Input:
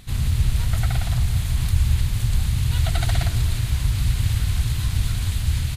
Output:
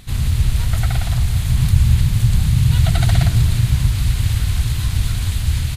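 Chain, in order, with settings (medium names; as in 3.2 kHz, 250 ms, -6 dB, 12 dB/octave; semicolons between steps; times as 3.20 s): 1.46–3.88 s: peaking EQ 150 Hz +8.5 dB 1 oct; trim +3.5 dB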